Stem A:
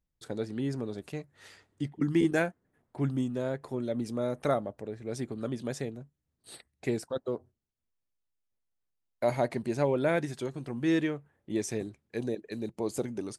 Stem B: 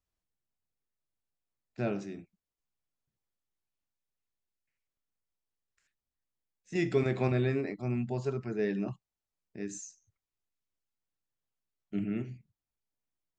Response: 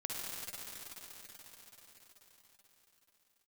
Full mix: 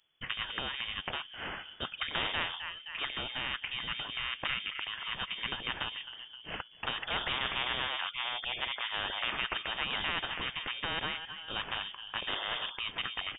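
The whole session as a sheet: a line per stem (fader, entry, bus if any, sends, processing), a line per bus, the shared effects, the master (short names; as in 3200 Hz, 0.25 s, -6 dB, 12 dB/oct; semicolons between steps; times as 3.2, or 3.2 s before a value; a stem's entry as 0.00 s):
-5.0 dB, 0.00 s, no send, echo send -24 dB, resonant low shelf 180 Hz -13.5 dB, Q 3
-1.0 dB, 0.35 s, no send, no echo send, dry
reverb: off
echo: feedback echo 0.261 s, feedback 46%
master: bell 240 Hz -9 dB 1.5 oct; inverted band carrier 3400 Hz; spectral compressor 4:1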